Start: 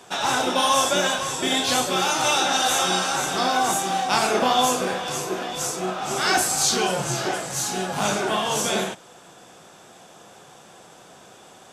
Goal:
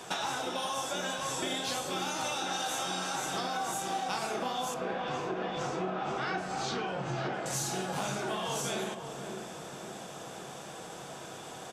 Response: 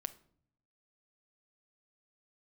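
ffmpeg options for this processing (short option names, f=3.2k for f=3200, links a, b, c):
-filter_complex "[0:a]asettb=1/sr,asplit=3[a][b][c];[a]atrim=end=4.744[d];[b]atrim=start=4.74:end=7.46,asetpts=PTS-STARTPTS,afade=t=in:d=0.004:c=qsin,afade=t=out:st=2.716:d=0.004:c=qsin,lowpass=2.7k[e];[c]atrim=start=7.456[f];[d][e]acrossfade=d=0.004:c1=hsin:c2=qsin[g];[g][f]acrossfade=d=0.004:c1=qsin:c2=hsin,acompressor=threshold=-34dB:ratio=12,asplit=2[h][i];[i]adelay=540,lowpass=f=810:p=1,volume=-5.5dB,asplit=2[j][k];[k]adelay=540,lowpass=f=810:p=1,volume=0.55,asplit=2[l][m];[m]adelay=540,lowpass=f=810:p=1,volume=0.55,asplit=2[n][o];[o]adelay=540,lowpass=f=810:p=1,volume=0.55,asplit=2[p][q];[q]adelay=540,lowpass=f=810:p=1,volume=0.55,asplit=2[r][s];[s]adelay=540,lowpass=f=810:p=1,volume=0.55,asplit=2[t][u];[u]adelay=540,lowpass=f=810:p=1,volume=0.55[v];[h][j][l][n][p][r][t][v]amix=inputs=8:normalize=0[w];[1:a]atrim=start_sample=2205[x];[w][x]afir=irnorm=-1:irlink=0,volume=4.5dB"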